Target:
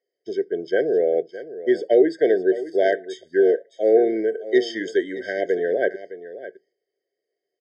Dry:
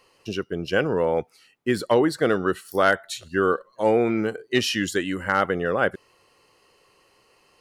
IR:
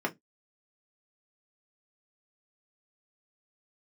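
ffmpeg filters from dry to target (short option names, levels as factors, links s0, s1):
-filter_complex "[0:a]agate=range=0.0891:threshold=0.00398:ratio=16:detection=peak,highpass=370,equalizer=f=410:t=q:w=4:g=9,equalizer=f=1800:t=q:w=4:g=-3,equalizer=f=3500:t=q:w=4:g=-6,lowpass=f=5700:w=0.5412,lowpass=f=5700:w=1.3066,aecho=1:1:612:0.188,asplit=2[s0][s1];[1:a]atrim=start_sample=2205,lowpass=2300,lowshelf=f=210:g=-9.5[s2];[s1][s2]afir=irnorm=-1:irlink=0,volume=0.141[s3];[s0][s3]amix=inputs=2:normalize=0,afftfilt=real='re*eq(mod(floor(b*sr/1024/760),2),0)':imag='im*eq(mod(floor(b*sr/1024/760),2),0)':win_size=1024:overlap=0.75"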